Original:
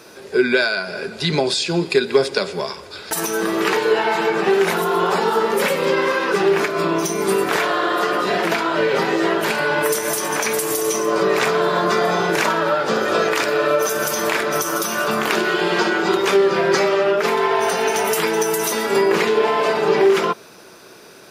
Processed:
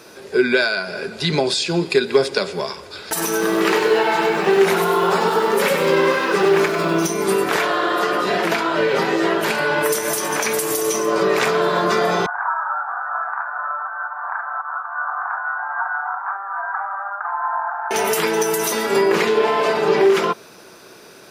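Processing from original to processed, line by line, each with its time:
0:03.06–0:07.07: feedback echo at a low word length 97 ms, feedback 35%, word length 7 bits, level −6 dB
0:12.26–0:17.91: Chebyshev band-pass filter 730–1,600 Hz, order 4

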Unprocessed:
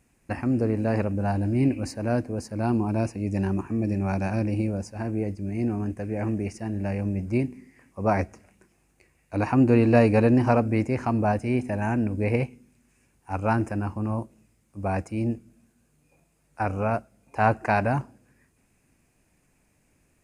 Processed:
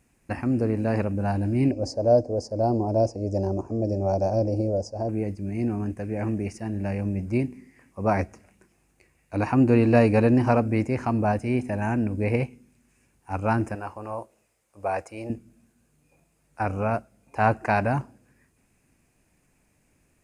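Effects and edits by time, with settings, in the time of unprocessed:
0:01.71–0:05.09: drawn EQ curve 120 Hz 0 dB, 170 Hz −7 dB, 360 Hz +2 dB, 600 Hz +12 dB, 900 Hz −2 dB, 1,700 Hz −18 dB, 3,500 Hz −17 dB, 5,000 Hz +6 dB, 7,300 Hz −2 dB, 11,000 Hz −16 dB
0:13.75–0:15.30: low shelf with overshoot 350 Hz −12.5 dB, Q 1.5

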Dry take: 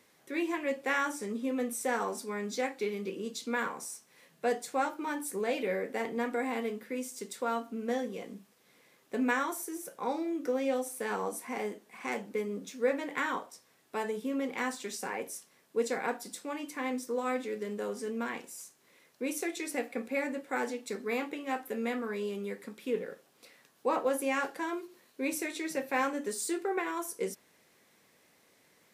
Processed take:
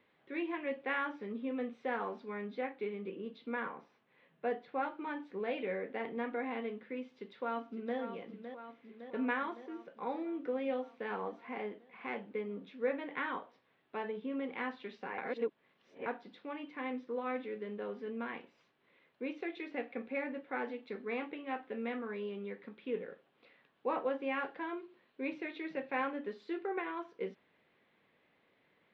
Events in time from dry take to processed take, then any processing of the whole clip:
0:02.47–0:04.83: low-pass filter 2,700 Hz 6 dB per octave
0:07.01–0:07.98: delay throw 560 ms, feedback 70%, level −9.5 dB
0:15.18–0:16.06: reverse
whole clip: Butterworth low-pass 3,500 Hz 36 dB per octave; level −5 dB

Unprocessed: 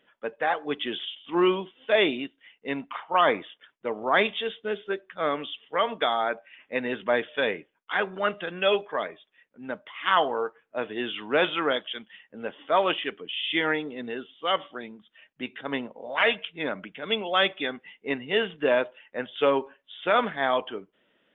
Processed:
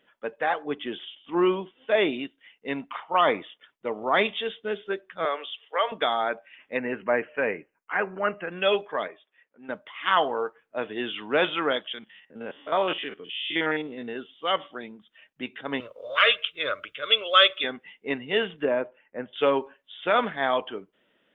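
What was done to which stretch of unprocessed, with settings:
0:00.62–0:02.12: low-pass filter 1,600 Hz → 2,500 Hz 6 dB per octave
0:03.00–0:04.36: notch filter 1,600 Hz
0:05.25–0:05.92: high-pass filter 440 Hz 24 dB per octave
0:06.77–0:08.52: Butterworth band-reject 3,500 Hz, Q 1.8
0:09.08–0:09.69: bass and treble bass −13 dB, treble −14 dB
0:11.94–0:14.16: spectrum averaged block by block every 50 ms
0:15.80–0:17.64: drawn EQ curve 130 Hz 0 dB, 180 Hz −23 dB, 580 Hz +4 dB, 830 Hz −19 dB, 1,200 Hz +10 dB, 1,800 Hz 0 dB, 3,800 Hz +10 dB, 6,900 Hz +8 dB
0:18.65–0:19.33: drawn EQ curve 310 Hz 0 dB, 2,400 Hz −8 dB, 4,200 Hz −28 dB

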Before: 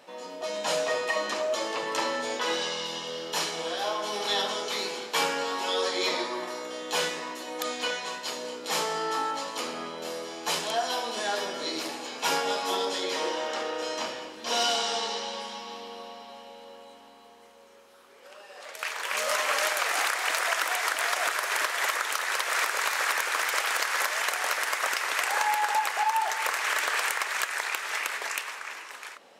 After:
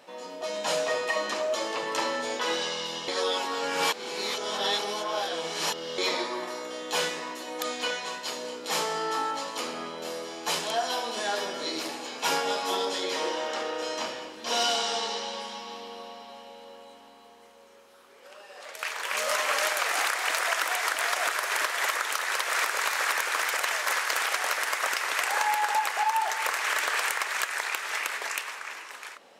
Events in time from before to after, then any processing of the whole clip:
0:03.08–0:05.98: reverse
0:23.57–0:24.36: reverse

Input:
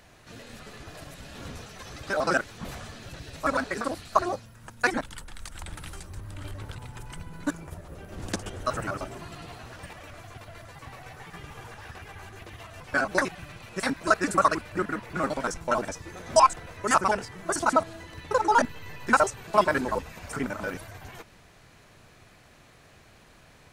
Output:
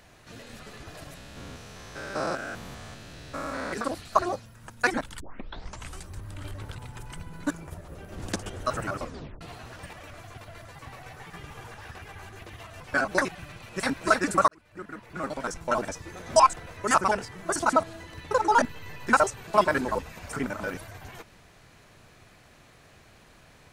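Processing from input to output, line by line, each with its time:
0:01.17–0:03.73: spectrum averaged block by block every 200 ms
0:05.20: tape start 0.79 s
0:08.99: tape stop 0.42 s
0:13.45–0:13.89: delay throw 290 ms, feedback 10%, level −3.5 dB
0:14.48–0:15.81: fade in

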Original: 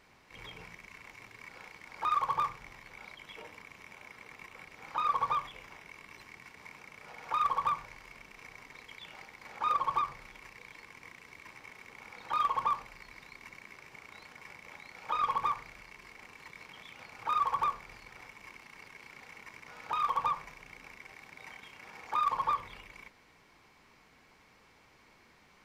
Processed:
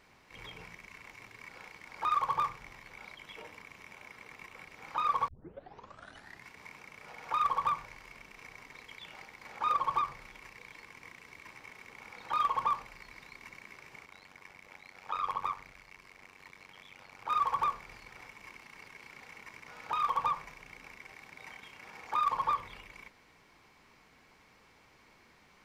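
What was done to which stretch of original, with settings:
0:05.28: tape start 1.20 s
0:14.05–0:17.30: amplitude modulation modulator 94 Hz, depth 70%

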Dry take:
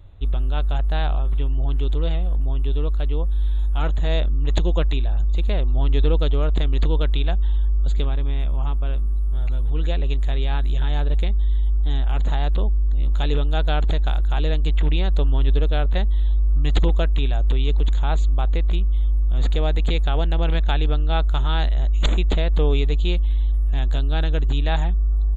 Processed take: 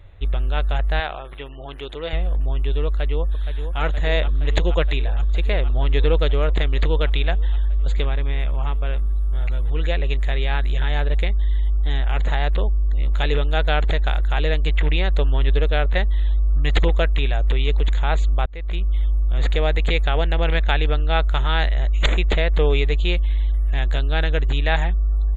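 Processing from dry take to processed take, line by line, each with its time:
0:01.00–0:02.13: high-pass filter 370 Hz 6 dB per octave
0:02.87–0:03.80: delay throw 470 ms, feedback 85%, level −8.5 dB
0:18.46–0:18.90: fade in
whole clip: octave-band graphic EQ 250/500/2,000 Hz −4/+5/+11 dB

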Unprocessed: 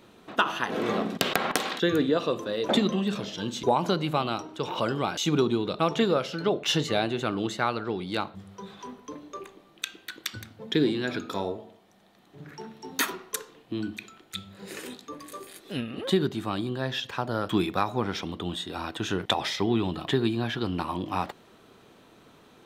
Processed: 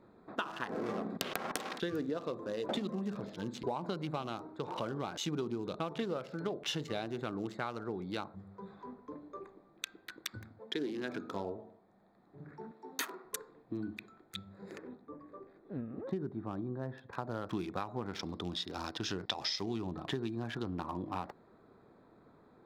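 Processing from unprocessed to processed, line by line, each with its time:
0:10.58–0:11.26: high-pass filter 450 Hz → 120 Hz
0:12.71–0:13.25: high-pass filter 310 Hz
0:14.78–0:17.13: head-to-tape spacing loss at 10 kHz 35 dB
0:18.19–0:19.78: low-pass with resonance 5,200 Hz, resonance Q 7.5
whole clip: adaptive Wiener filter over 15 samples; downward compressor 4 to 1, threshold −28 dBFS; level −5.5 dB

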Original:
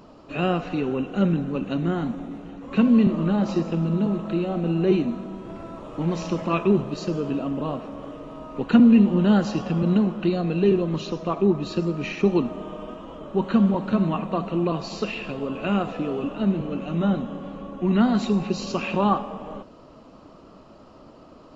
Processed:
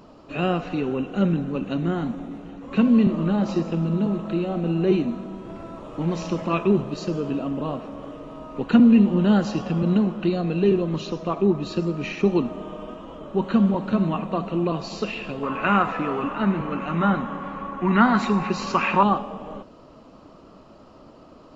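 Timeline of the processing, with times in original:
0:15.43–0:19.03: flat-topped bell 1,400 Hz +12 dB

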